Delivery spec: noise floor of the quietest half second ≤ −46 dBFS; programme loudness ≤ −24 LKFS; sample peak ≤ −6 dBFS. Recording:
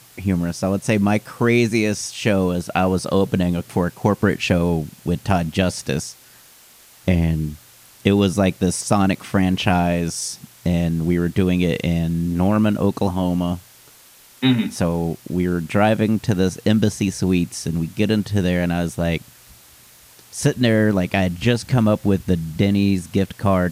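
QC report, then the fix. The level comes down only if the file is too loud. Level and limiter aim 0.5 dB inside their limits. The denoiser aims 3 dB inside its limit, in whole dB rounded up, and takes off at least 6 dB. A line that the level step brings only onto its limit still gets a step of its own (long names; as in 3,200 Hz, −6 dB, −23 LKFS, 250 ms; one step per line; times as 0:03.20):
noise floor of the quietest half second −48 dBFS: in spec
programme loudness −20.0 LKFS: out of spec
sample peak −3.0 dBFS: out of spec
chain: level −4.5 dB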